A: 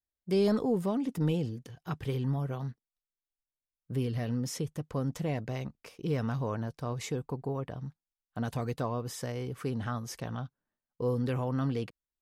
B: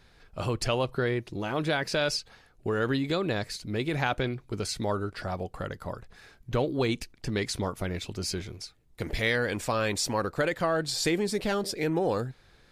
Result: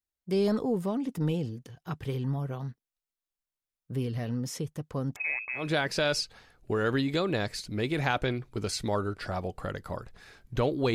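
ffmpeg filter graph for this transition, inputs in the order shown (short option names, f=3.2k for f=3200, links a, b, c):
-filter_complex "[0:a]asettb=1/sr,asplit=3[a][b][c];[a]atrim=end=5.164[d];[b]atrim=start=5.16:end=5.71,asetpts=PTS-STARTPTS,afade=t=in:d=0.004:c=qsin,afade=t=out:st=0.546:d=0.004:c=qsin,lowpass=f=2.3k:t=q:w=0.5098,lowpass=f=2.3k:t=q:w=0.6013,lowpass=f=2.3k:t=q:w=0.9,lowpass=f=2.3k:t=q:w=2.563,afreqshift=-2700[e];[c]atrim=start=5.706[f];[d][e]acrossfade=d=0.004:c1=hsin:c2=qsin[g];[g][f]acrossfade=d=0.004:c1=qsin:c2=hsin,apad=whole_dur=10.94,atrim=end=10.94,atrim=end=5.71,asetpts=PTS-STARTPTS[h];[1:a]atrim=start=1.49:end=6.9,asetpts=PTS-STARTPTS[i];[h][i]acrossfade=d=0.18:c1=tri:c2=tri"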